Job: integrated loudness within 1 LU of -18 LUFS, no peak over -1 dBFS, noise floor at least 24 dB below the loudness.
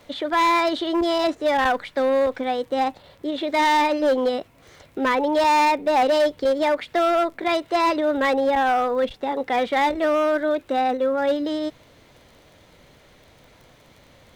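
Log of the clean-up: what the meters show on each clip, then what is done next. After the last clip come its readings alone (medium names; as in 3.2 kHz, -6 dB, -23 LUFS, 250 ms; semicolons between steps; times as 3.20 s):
tick rate 17 per s; loudness -21.5 LUFS; peak level -14.0 dBFS; loudness target -18.0 LUFS
-> de-click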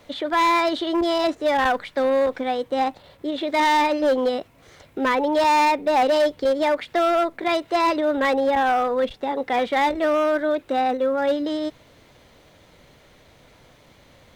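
tick rate 0.42 per s; loudness -21.5 LUFS; peak level -11.0 dBFS; loudness target -18.0 LUFS
-> trim +3.5 dB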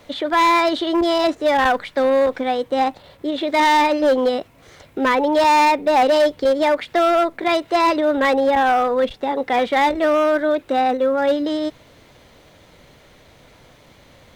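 loudness -18.0 LUFS; peak level -7.5 dBFS; noise floor -50 dBFS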